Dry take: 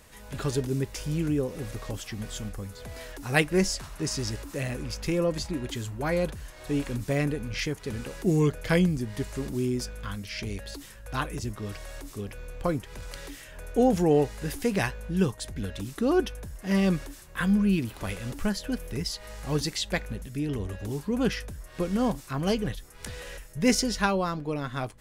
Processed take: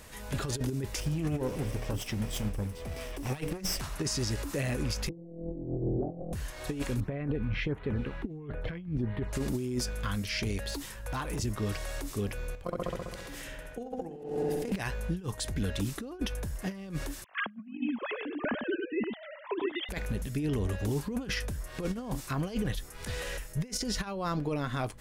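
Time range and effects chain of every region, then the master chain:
1–3.81 minimum comb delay 0.37 ms + notches 60/120/180/240/300/360/420/480 Hz + mismatched tape noise reduction decoder only
5.09–6.33 delta modulation 32 kbps, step -46 dBFS + steep low-pass 770 Hz 72 dB/oct + flutter echo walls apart 4.1 m, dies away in 1.4 s
7–9.33 air absorption 410 m + notch 4800 Hz, Q 8.2 + LFO notch sine 1.5 Hz 420–6100 Hz
10.69–11.39 compressor 12:1, threshold -32 dBFS + hard clip -34 dBFS + bell 940 Hz +5 dB 0.33 oct
12.55–14.72 level quantiser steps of 24 dB + darkening echo 66 ms, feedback 74%, low-pass 3800 Hz, level -3.5 dB
17.24–19.89 sine-wave speech + echo 99 ms -6 dB
whole clip: negative-ratio compressor -30 dBFS, ratio -0.5; limiter -22.5 dBFS

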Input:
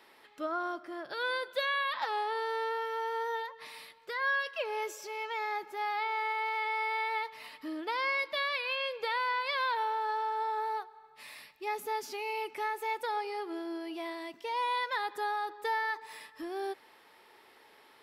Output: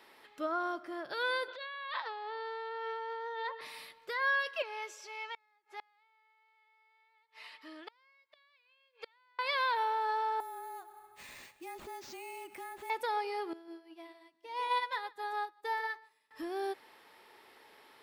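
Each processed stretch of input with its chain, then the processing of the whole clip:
1.48–3.61 negative-ratio compressor -40 dBFS + Chebyshev band-pass 380–4500 Hz, order 3
4.62–9.39 HPF 1400 Hz 6 dB/oct + air absorption 63 m + flipped gate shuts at -30 dBFS, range -33 dB
10.4–12.9 compressor 2.5:1, threshold -47 dBFS + frequency shift -30 Hz + sample-rate reducer 11000 Hz
13.53–16.31 echo 0.149 s -9 dB + upward expander 2.5:1, over -47 dBFS
whole clip: dry

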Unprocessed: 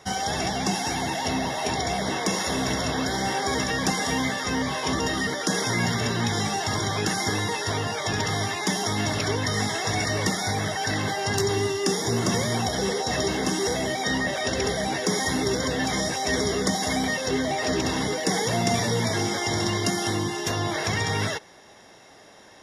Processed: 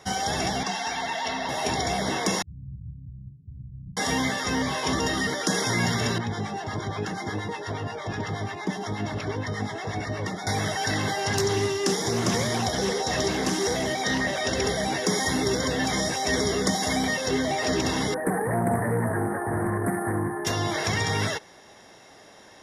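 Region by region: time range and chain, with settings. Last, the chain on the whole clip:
0.63–1.49 three-band isolator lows -12 dB, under 600 Hz, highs -14 dB, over 5200 Hz + comb 4.4 ms, depth 42%
2.42–3.97 inverse Chebyshev low-pass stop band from 680 Hz, stop band 80 dB + comb 6.5 ms, depth 39%
6.18–10.47 LPF 1600 Hz 6 dB/oct + harmonic tremolo 8.4 Hz, crossover 750 Hz
11.25–14.49 notches 60/120/180/240/300/360/420 Hz + Doppler distortion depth 0.16 ms
18.14–20.45 brick-wall FIR band-stop 1900–8600 Hz + Doppler distortion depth 0.19 ms
whole clip: dry

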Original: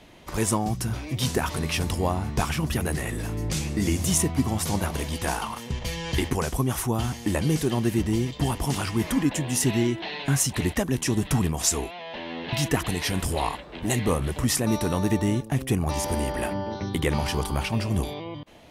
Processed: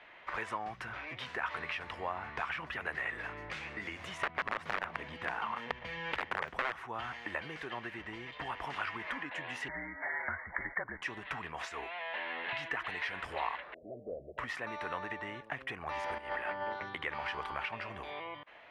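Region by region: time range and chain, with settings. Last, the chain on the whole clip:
4.22–6.86 bell 180 Hz +13 dB 2.4 oct + wrapped overs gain 10 dB
9.68–11.02 brick-wall FIR low-pass 2300 Hz + frequency shift -52 Hz
13.74–14.38 steep low-pass 670 Hz 96 dB/oct + low shelf 360 Hz -8.5 dB + notches 50/100/150 Hz
16.18–16.73 notch 6200 Hz, Q 6.1 + negative-ratio compressor -30 dBFS, ratio -0.5
whole clip: EQ curve 810 Hz 0 dB, 1800 Hz +10 dB, 4200 Hz +7 dB, 13000 Hz -9 dB; compressor, threshold -25 dBFS; three-band isolator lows -20 dB, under 540 Hz, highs -24 dB, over 2300 Hz; gain -2.5 dB

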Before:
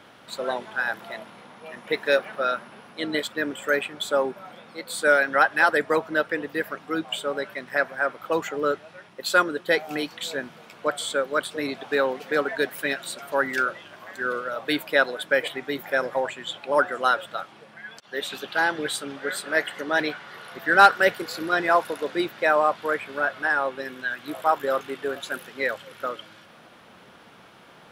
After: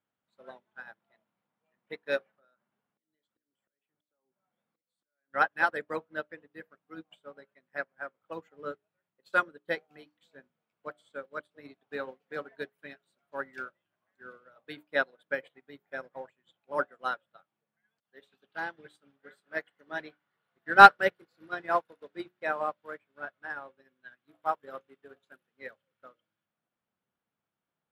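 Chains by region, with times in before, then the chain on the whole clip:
2.35–5.34 compressor 8:1, threshold -31 dBFS + auto swell 0.664 s + notch 2500 Hz, Q 20
whole clip: tone controls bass +6 dB, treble -7 dB; notches 60/120/180/240/300/360/420/480/540/600 Hz; upward expander 2.5:1, over -38 dBFS; gain +2.5 dB

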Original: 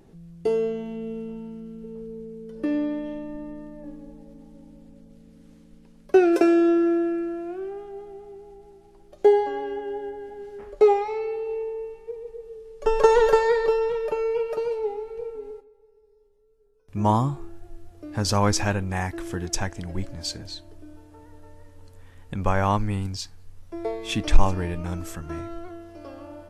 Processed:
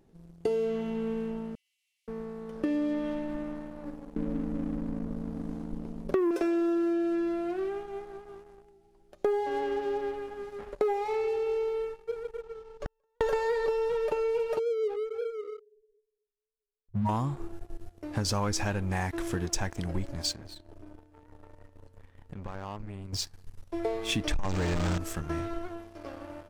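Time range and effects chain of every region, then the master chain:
1.55–2.08 steep high-pass 2000 Hz 96 dB/oct + sample leveller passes 1
4.16–6.31 resonant low shelf 600 Hz +13 dB, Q 1.5 + compressor 1.5:1, threshold -24 dBFS
12.41–13.21 LPF 5700 Hz + compressor 4:1, threshold -23 dBFS + flipped gate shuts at -24 dBFS, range -41 dB
14.59–17.09 spectral contrast raised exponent 3.9 + gate with hold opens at -53 dBFS, closes at -58 dBFS + echo 0.244 s -16.5 dB
20.33–23.13 high shelf 3600 Hz -9 dB + compressor 4:1, threshold -38 dBFS
24.39–24.98 zero-crossing step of -22 dBFS + steep low-pass 8200 Hz 72 dB/oct
whole clip: sample leveller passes 2; compressor 6:1, threshold -20 dBFS; gain -6 dB

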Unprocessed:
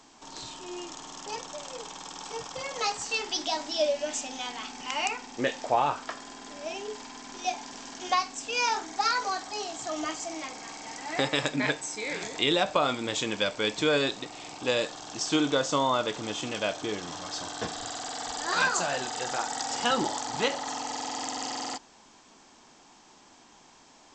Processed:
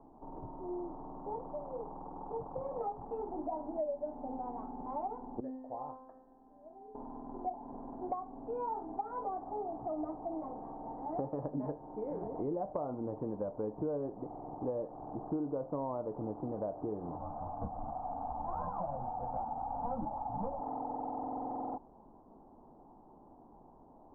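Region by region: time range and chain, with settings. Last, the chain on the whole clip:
5.4–6.95 bell 1700 Hz +13 dB 0.21 oct + resonator 260 Hz, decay 0.94 s, mix 90%
17.18–20.6 half-waves squared off + fixed phaser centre 960 Hz, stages 4 + ensemble effect
whole clip: steep low-pass 900 Hz 36 dB/oct; low shelf 67 Hz +10 dB; compressor 4:1, threshold -36 dBFS; gain +1 dB

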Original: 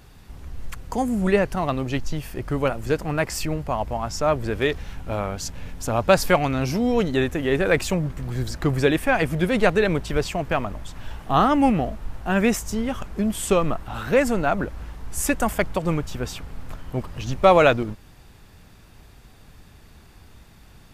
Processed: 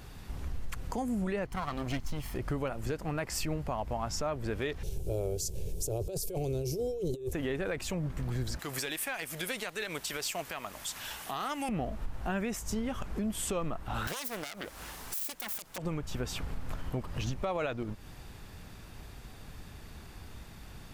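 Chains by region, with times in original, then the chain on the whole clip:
1.46–2.35 minimum comb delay 0.96 ms + mismatched tape noise reduction decoder only
4.83–7.33 EQ curve 160 Hz 0 dB, 230 Hz -18 dB, 390 Hz +10 dB, 1200 Hz -27 dB, 5700 Hz +1 dB, 9900 Hz +7 dB + negative-ratio compressor -27 dBFS + Butterworth band-stop 1900 Hz, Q 5.6
8.59–11.69 tilt +4.5 dB/oct + tube stage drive 6 dB, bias 0.55
14.07–15.78 self-modulated delay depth 0.67 ms + RIAA curve recording
whole clip: compressor 4:1, threshold -32 dBFS; limiter -25 dBFS; gain +1 dB

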